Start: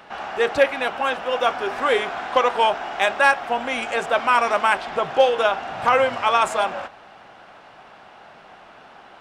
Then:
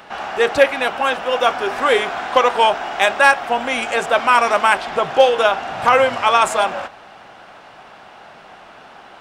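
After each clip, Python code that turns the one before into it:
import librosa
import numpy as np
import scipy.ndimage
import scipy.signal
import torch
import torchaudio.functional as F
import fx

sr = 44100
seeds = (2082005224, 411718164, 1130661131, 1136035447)

y = fx.high_shelf(x, sr, hz=5800.0, db=5.0)
y = F.gain(torch.from_numpy(y), 4.0).numpy()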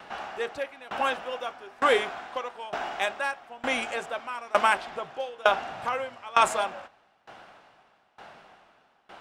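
y = fx.tremolo_decay(x, sr, direction='decaying', hz=1.1, depth_db=24)
y = F.gain(torch.from_numpy(y), -4.0).numpy()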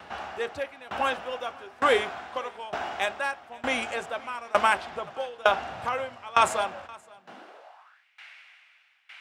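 y = x + 10.0 ** (-24.0 / 20.0) * np.pad(x, (int(524 * sr / 1000.0), 0))[:len(x)]
y = fx.filter_sweep_highpass(y, sr, from_hz=75.0, to_hz=2200.0, start_s=7.01, end_s=8.05, q=4.1)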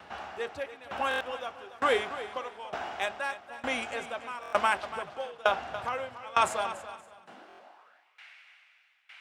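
y = fx.echo_feedback(x, sr, ms=286, feedback_pct=15, wet_db=-13.5)
y = fx.buffer_glitch(y, sr, at_s=(1.09, 4.41, 7.48), block=1024, repeats=4)
y = F.gain(torch.from_numpy(y), -4.0).numpy()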